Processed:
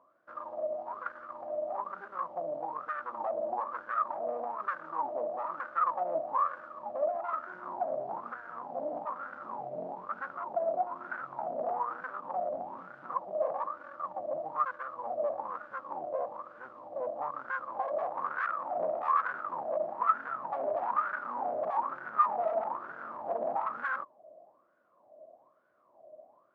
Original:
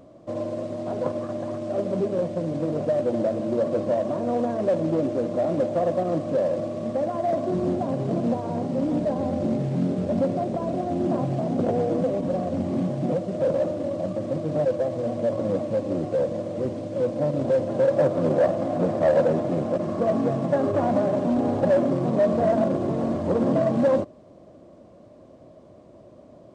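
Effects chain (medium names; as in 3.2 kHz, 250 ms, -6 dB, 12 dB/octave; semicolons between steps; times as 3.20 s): self-modulated delay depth 0.75 ms; peak limiter -15 dBFS, peak gain reduction 4.5 dB; wah-wah 1.1 Hz 630–1500 Hz, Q 13; trim +5.5 dB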